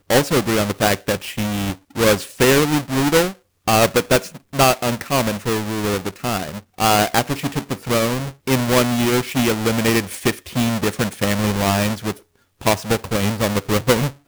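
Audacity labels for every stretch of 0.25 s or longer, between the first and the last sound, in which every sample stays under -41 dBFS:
3.350000	3.670000	silence
12.190000	12.610000	silence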